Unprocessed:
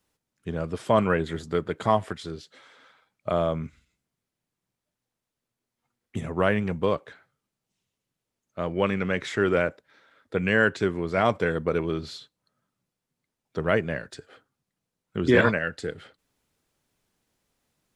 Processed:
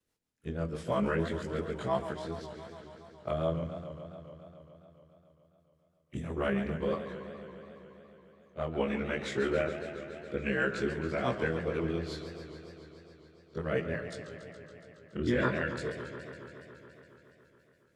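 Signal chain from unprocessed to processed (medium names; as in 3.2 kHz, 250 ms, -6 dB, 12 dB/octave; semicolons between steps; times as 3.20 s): short-time spectra conjugated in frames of 49 ms; in parallel at +3 dB: peak limiter -17.5 dBFS, peak gain reduction 9 dB; on the sum: rotary cabinet horn 6 Hz; flange 0.44 Hz, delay 8.8 ms, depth 1.5 ms, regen -85%; modulated delay 140 ms, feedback 79%, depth 163 cents, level -11 dB; trim -4.5 dB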